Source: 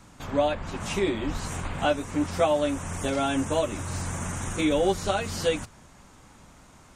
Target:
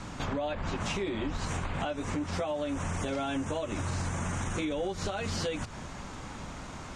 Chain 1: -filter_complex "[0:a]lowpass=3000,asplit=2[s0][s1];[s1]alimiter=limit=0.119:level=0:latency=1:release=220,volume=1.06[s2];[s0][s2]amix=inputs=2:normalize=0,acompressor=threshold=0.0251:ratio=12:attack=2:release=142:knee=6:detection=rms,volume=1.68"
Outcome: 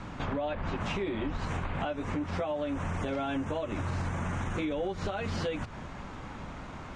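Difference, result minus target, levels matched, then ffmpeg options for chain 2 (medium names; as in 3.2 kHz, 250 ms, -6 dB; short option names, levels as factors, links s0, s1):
8 kHz band -10.5 dB
-filter_complex "[0:a]lowpass=6200,asplit=2[s0][s1];[s1]alimiter=limit=0.119:level=0:latency=1:release=220,volume=1.06[s2];[s0][s2]amix=inputs=2:normalize=0,acompressor=threshold=0.0251:ratio=12:attack=2:release=142:knee=6:detection=rms,volume=1.68"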